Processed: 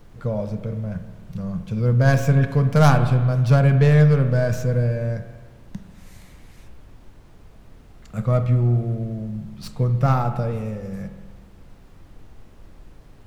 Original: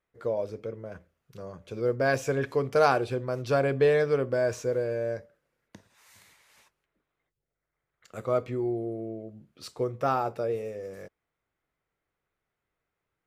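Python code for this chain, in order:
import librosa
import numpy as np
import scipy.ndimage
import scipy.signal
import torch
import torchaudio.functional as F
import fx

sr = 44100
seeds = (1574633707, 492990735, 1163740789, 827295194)

y = fx.tracing_dist(x, sr, depth_ms=0.11)
y = fx.low_shelf_res(y, sr, hz=250.0, db=11.0, q=3.0)
y = fx.dmg_noise_colour(y, sr, seeds[0], colour='brown', level_db=-47.0)
y = fx.rev_spring(y, sr, rt60_s=1.5, pass_ms=(33, 46), chirp_ms=35, drr_db=8.5)
y = F.gain(torch.from_numpy(y), 3.5).numpy()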